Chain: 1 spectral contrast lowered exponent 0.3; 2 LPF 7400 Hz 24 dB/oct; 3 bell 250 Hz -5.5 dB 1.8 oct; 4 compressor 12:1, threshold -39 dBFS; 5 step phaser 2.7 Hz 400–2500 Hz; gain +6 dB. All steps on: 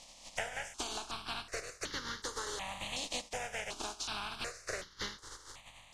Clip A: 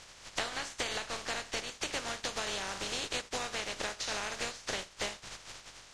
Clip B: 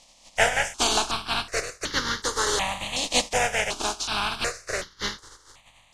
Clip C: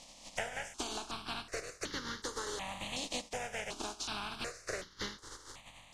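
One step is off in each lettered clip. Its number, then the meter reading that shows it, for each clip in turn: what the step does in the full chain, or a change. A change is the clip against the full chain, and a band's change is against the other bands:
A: 5, 125 Hz band -1.5 dB; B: 4, momentary loudness spread change +4 LU; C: 3, 250 Hz band +4.5 dB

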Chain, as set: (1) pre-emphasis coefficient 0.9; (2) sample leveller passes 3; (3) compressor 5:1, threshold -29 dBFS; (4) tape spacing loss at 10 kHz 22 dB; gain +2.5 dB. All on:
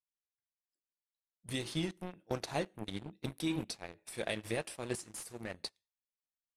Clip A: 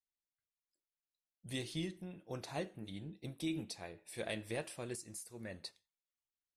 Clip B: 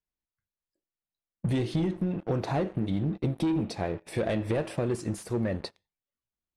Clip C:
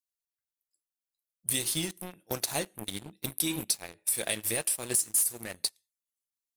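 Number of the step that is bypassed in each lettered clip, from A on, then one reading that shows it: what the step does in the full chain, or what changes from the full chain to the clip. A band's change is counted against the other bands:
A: 2, crest factor change -2.0 dB; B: 1, 8 kHz band -11.0 dB; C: 4, 8 kHz band +18.0 dB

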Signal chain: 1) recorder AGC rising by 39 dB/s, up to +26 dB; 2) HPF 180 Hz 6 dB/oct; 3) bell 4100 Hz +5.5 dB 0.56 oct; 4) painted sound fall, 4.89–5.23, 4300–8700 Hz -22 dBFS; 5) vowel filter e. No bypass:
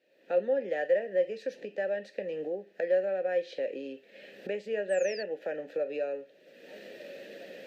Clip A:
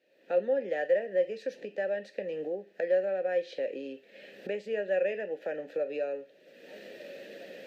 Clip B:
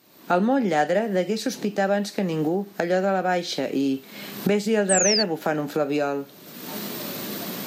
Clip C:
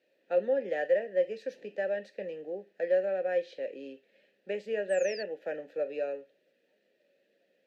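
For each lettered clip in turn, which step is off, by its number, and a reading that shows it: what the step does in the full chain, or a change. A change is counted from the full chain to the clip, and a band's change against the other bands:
4, 4 kHz band -1.5 dB; 5, 500 Hz band -14.0 dB; 1, momentary loudness spread change -5 LU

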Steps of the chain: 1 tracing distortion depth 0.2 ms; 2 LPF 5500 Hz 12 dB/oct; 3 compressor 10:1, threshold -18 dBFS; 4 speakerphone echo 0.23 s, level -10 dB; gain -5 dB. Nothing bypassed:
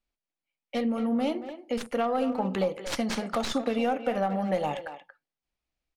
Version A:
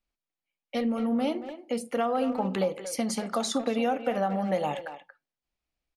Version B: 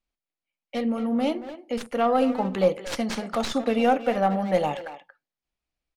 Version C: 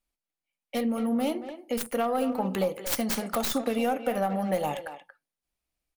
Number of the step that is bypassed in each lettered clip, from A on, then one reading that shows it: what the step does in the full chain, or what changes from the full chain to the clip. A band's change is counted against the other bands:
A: 1, 8 kHz band +5.5 dB; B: 3, mean gain reduction 2.5 dB; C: 2, 8 kHz band +6.5 dB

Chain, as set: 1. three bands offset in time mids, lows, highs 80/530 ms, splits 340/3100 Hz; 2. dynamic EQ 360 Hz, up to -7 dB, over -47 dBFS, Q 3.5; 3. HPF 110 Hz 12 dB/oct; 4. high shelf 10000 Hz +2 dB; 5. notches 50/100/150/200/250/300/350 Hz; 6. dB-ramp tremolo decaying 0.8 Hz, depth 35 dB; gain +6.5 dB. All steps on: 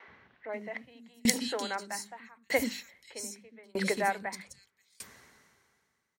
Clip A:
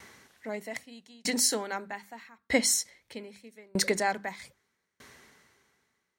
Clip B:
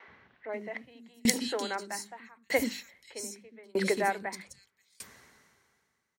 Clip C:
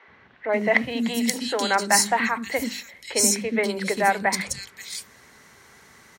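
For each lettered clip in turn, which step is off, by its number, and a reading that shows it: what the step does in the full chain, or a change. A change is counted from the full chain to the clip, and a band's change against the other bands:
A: 1, crest factor change -8.5 dB; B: 2, 500 Hz band +2.0 dB; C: 6, momentary loudness spread change -4 LU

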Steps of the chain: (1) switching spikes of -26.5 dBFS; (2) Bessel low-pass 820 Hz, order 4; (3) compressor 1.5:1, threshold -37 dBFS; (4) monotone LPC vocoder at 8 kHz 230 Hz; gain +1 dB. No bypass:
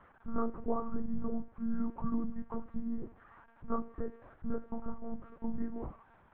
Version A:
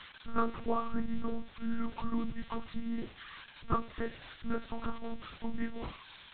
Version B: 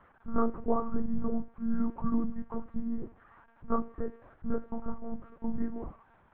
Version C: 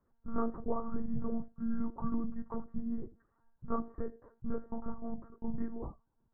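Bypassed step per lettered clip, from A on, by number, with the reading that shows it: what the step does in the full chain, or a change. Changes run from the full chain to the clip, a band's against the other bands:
2, crest factor change +3.0 dB; 3, mean gain reduction 2.5 dB; 1, distortion -9 dB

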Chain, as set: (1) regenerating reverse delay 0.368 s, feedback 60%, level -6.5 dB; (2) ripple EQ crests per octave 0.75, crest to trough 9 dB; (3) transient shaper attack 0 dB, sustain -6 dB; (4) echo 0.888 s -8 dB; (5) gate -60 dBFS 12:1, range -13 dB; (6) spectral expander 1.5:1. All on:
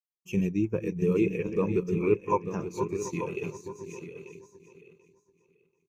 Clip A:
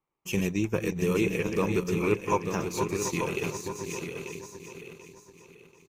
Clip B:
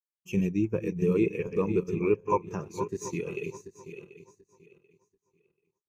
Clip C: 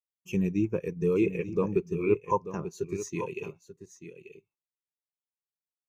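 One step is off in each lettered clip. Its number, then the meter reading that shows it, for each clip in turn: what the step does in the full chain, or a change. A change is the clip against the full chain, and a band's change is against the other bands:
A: 6, 2 kHz band +7.5 dB; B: 4, momentary loudness spread change +4 LU; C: 1, momentary loudness spread change +2 LU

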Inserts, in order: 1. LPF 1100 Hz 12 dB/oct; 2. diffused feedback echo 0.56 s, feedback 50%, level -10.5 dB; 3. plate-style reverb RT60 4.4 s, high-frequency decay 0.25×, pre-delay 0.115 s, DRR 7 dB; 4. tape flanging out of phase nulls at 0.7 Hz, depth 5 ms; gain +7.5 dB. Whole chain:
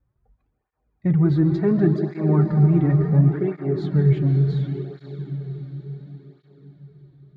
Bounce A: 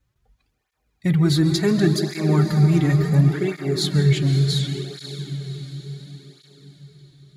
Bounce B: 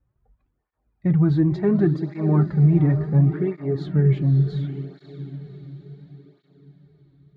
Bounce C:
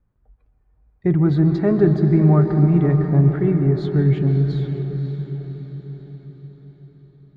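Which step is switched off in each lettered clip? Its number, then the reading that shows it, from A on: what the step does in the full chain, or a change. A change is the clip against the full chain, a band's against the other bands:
1, 1 kHz band +2.0 dB; 3, momentary loudness spread change +3 LU; 4, 125 Hz band -1.5 dB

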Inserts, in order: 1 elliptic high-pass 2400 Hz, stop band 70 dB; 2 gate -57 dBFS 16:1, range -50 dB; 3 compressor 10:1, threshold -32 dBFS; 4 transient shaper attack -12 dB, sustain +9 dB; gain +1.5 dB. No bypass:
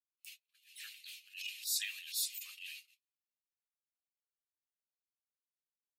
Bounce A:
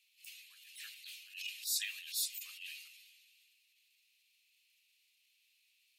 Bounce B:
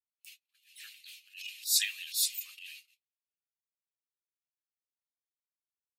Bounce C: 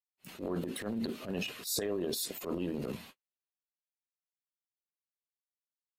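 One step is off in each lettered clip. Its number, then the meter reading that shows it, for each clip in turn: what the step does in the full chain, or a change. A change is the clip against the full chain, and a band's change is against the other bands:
2, momentary loudness spread change -1 LU; 3, mean gain reduction 2.5 dB; 1, crest factor change -5.5 dB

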